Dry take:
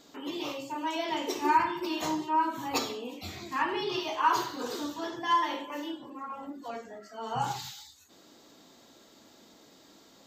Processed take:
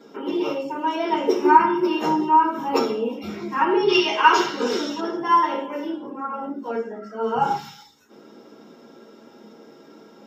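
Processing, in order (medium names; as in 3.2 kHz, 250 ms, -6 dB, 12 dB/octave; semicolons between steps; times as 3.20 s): 3.88–5.00 s: high-order bell 3.7 kHz +11.5 dB 2.4 oct; reverberation, pre-delay 3 ms, DRR -3 dB; trim -7.5 dB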